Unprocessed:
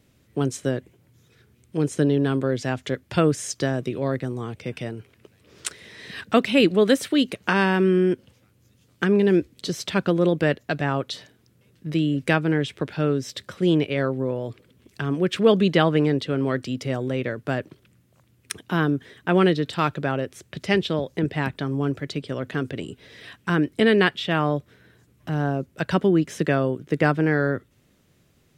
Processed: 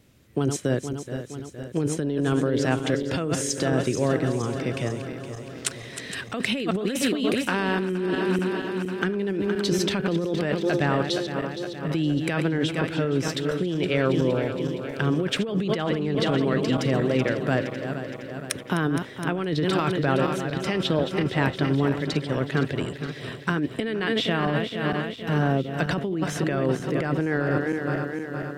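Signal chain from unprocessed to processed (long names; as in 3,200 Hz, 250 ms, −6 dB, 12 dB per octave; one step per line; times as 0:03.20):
feedback delay that plays each chunk backwards 233 ms, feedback 76%, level −10 dB
compressor whose output falls as the input rises −23 dBFS, ratio −1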